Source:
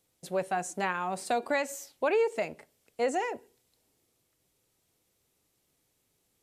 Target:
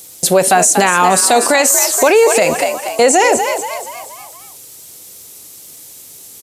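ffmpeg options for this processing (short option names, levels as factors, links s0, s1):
-filter_complex "[0:a]highpass=58,bass=f=250:g=-3,treble=f=4000:g=13,acompressor=threshold=0.0282:ratio=2,asplit=2[s0][s1];[s1]asplit=5[s2][s3][s4][s5][s6];[s2]adelay=238,afreqshift=65,volume=0.266[s7];[s3]adelay=476,afreqshift=130,volume=0.127[s8];[s4]adelay=714,afreqshift=195,volume=0.061[s9];[s5]adelay=952,afreqshift=260,volume=0.0295[s10];[s6]adelay=1190,afreqshift=325,volume=0.0141[s11];[s7][s8][s9][s10][s11]amix=inputs=5:normalize=0[s12];[s0][s12]amix=inputs=2:normalize=0,alimiter=level_in=26.6:limit=0.891:release=50:level=0:latency=1,volume=0.891"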